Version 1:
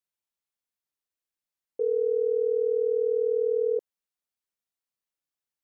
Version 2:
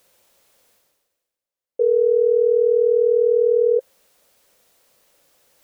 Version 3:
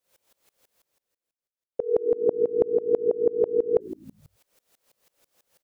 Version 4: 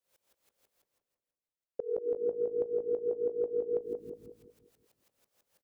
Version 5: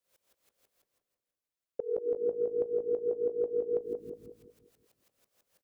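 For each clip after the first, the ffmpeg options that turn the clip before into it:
-af "equalizer=f=530:w=2.1:g=12,areverse,acompressor=mode=upward:threshold=0.0158:ratio=2.5,areverse"
-filter_complex "[0:a]asplit=8[s0][s1][s2][s3][s4][s5][s6][s7];[s1]adelay=81,afreqshift=-55,volume=0.251[s8];[s2]adelay=162,afreqshift=-110,volume=0.148[s9];[s3]adelay=243,afreqshift=-165,volume=0.0871[s10];[s4]adelay=324,afreqshift=-220,volume=0.0519[s11];[s5]adelay=405,afreqshift=-275,volume=0.0305[s12];[s6]adelay=486,afreqshift=-330,volume=0.018[s13];[s7]adelay=567,afreqshift=-385,volume=0.0106[s14];[s0][s8][s9][s10][s11][s12][s13][s14]amix=inputs=8:normalize=0,aeval=exprs='val(0)*pow(10,-25*if(lt(mod(-6.1*n/s,1),2*abs(-6.1)/1000),1-mod(-6.1*n/s,1)/(2*abs(-6.1)/1000),(mod(-6.1*n/s,1)-2*abs(-6.1)/1000)/(1-2*abs(-6.1)/1000))/20)':c=same"
-filter_complex "[0:a]acompressor=threshold=0.0794:ratio=6,asplit=2[s0][s1];[s1]adelay=183,lowpass=f=1000:p=1,volume=0.562,asplit=2[s2][s3];[s3]adelay=183,lowpass=f=1000:p=1,volume=0.46,asplit=2[s4][s5];[s5]adelay=183,lowpass=f=1000:p=1,volume=0.46,asplit=2[s6][s7];[s7]adelay=183,lowpass=f=1000:p=1,volume=0.46,asplit=2[s8][s9];[s9]adelay=183,lowpass=f=1000:p=1,volume=0.46,asplit=2[s10][s11];[s11]adelay=183,lowpass=f=1000:p=1,volume=0.46[s12];[s0][s2][s4][s6][s8][s10][s12]amix=inputs=7:normalize=0,volume=0.447"
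-af "bandreject=f=870:w=14,volume=1.12"

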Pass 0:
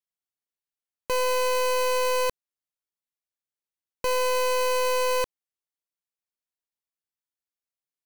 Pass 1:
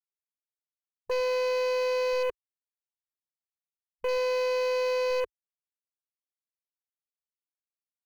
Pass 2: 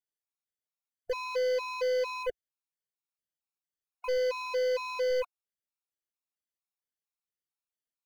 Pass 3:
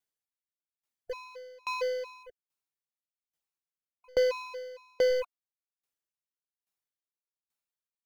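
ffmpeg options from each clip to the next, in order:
-af "afwtdn=0.0158,lowshelf=f=340:t=q:w=3:g=-6,aecho=1:1:4.4:0.36,volume=0.501"
-af "afftfilt=real='re*gt(sin(2*PI*2.2*pts/sr)*(1-2*mod(floor(b*sr/1024/720),2)),0)':imag='im*gt(sin(2*PI*2.2*pts/sr)*(1-2*mod(floor(b*sr/1024/720),2)),0)':win_size=1024:overlap=0.75"
-af "aeval=exprs='val(0)*pow(10,-34*if(lt(mod(1.2*n/s,1),2*abs(1.2)/1000),1-mod(1.2*n/s,1)/(2*abs(1.2)/1000),(mod(1.2*n/s,1)-2*abs(1.2)/1000)/(1-2*abs(1.2)/1000))/20)':c=same,volume=2.11"

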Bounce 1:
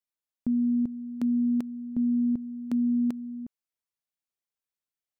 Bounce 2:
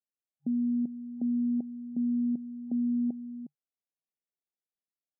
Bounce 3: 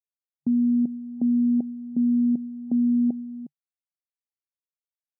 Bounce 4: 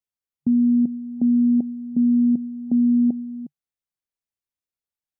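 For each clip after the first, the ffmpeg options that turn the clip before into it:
-af "afftfilt=real='re*between(b*sr/4096,140,810)':imag='im*between(b*sr/4096,140,810)':win_size=4096:overlap=0.75,volume=0.668"
-af "agate=range=0.0224:threshold=0.0141:ratio=3:detection=peak,volume=2.37"
-af "lowshelf=f=220:g=8"

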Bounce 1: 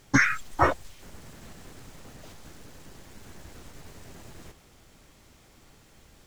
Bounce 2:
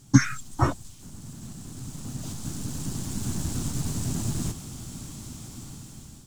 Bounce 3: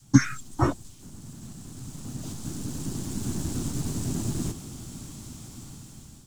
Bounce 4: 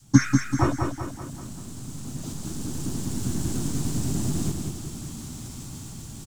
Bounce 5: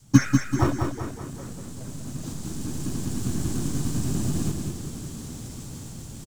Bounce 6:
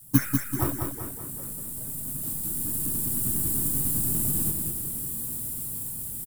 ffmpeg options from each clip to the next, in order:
-af "equalizer=f=125:t=o:w=1:g=10,equalizer=f=250:t=o:w=1:g=8,equalizer=f=500:t=o:w=1:g=-10,equalizer=f=2000:t=o:w=1:g=-10,equalizer=f=8000:t=o:w=1:g=9,dynaudnorm=f=560:g=5:m=5.01,volume=0.891"
-af "adynamicequalizer=threshold=0.00794:dfrequency=340:dqfactor=1.2:tfrequency=340:tqfactor=1.2:attack=5:release=100:ratio=0.375:range=3:mode=boostabove:tftype=bell,volume=0.794"
-af "aecho=1:1:193|386|579|772|965|1158:0.562|0.276|0.135|0.0662|0.0324|0.0159,areverse,acompressor=mode=upward:threshold=0.0224:ratio=2.5,areverse,volume=1.12"
-filter_complex "[0:a]asplit=5[s0][s1][s2][s3][s4];[s1]adelay=414,afreqshift=91,volume=0.0891[s5];[s2]adelay=828,afreqshift=182,volume=0.0479[s6];[s3]adelay=1242,afreqshift=273,volume=0.026[s7];[s4]adelay=1656,afreqshift=364,volume=0.014[s8];[s0][s5][s6][s7][s8]amix=inputs=5:normalize=0,asplit=2[s9][s10];[s10]acrusher=samples=32:mix=1:aa=0.000001,volume=0.266[s11];[s9][s11]amix=inputs=2:normalize=0,volume=0.841"
-af "aexciter=amount=15.7:drive=7.9:freq=9300,volume=0.501"

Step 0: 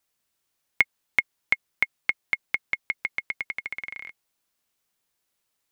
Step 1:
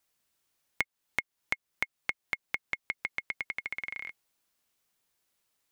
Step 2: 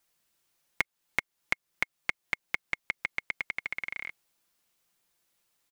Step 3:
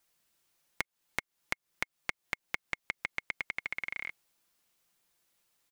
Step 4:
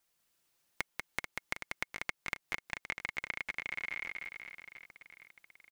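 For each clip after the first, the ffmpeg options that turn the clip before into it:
-af "acompressor=threshold=0.0251:ratio=2.5"
-af "aecho=1:1:5.8:0.33,volume=1.26"
-af "acompressor=threshold=0.0316:ratio=6"
-af "aecho=1:1:190|437|758.1|1176|1718:0.631|0.398|0.251|0.158|0.1,volume=0.708"

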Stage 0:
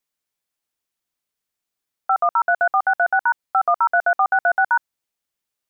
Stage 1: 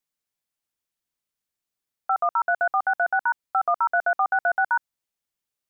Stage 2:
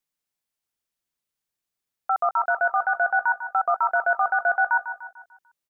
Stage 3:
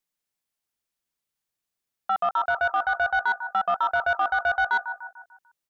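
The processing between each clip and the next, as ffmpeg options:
-af "bass=f=250:g=3,treble=f=4000:g=1,volume=0.596"
-af "aecho=1:1:148|296|444|592|740:0.266|0.122|0.0563|0.0259|0.0119"
-af "asoftclip=type=tanh:threshold=0.178"

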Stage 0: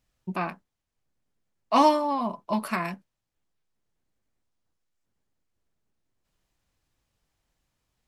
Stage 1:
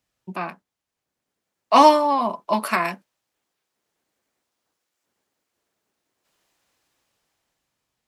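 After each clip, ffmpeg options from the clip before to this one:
-filter_complex "[0:a]highpass=f=210:p=1,acrossover=split=270[s0][s1];[s1]dynaudnorm=f=210:g=11:m=2.82[s2];[s0][s2]amix=inputs=2:normalize=0,volume=1.12"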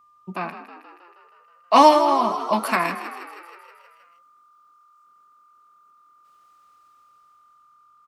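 -filter_complex "[0:a]aeval=exprs='val(0)+0.002*sin(2*PI*1200*n/s)':c=same,asplit=9[s0][s1][s2][s3][s4][s5][s6][s7][s8];[s1]adelay=159,afreqshift=43,volume=0.266[s9];[s2]adelay=318,afreqshift=86,volume=0.17[s10];[s3]adelay=477,afreqshift=129,volume=0.108[s11];[s4]adelay=636,afreqshift=172,volume=0.07[s12];[s5]adelay=795,afreqshift=215,volume=0.0447[s13];[s6]adelay=954,afreqshift=258,volume=0.0285[s14];[s7]adelay=1113,afreqshift=301,volume=0.0182[s15];[s8]adelay=1272,afreqshift=344,volume=0.0117[s16];[s0][s9][s10][s11][s12][s13][s14][s15][s16]amix=inputs=9:normalize=0"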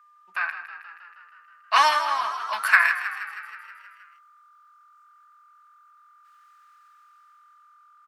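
-af "highpass=f=1600:t=q:w=5.4,volume=0.841"

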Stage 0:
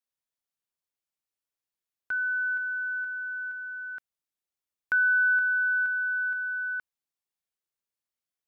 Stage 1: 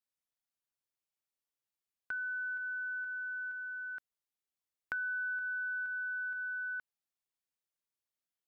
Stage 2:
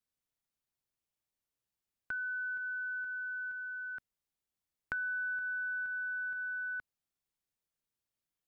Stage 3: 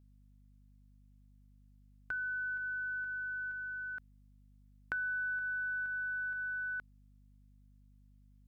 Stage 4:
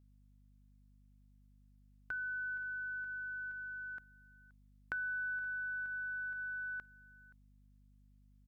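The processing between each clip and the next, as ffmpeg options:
-af "acompressor=threshold=0.0224:ratio=4,volume=0.631"
-af "lowshelf=f=270:g=10"
-af "aeval=exprs='val(0)+0.000891*(sin(2*PI*50*n/s)+sin(2*PI*2*50*n/s)/2+sin(2*PI*3*50*n/s)/3+sin(2*PI*4*50*n/s)/4+sin(2*PI*5*50*n/s)/5)':c=same"
-af "aecho=1:1:525:0.0841,volume=0.75"

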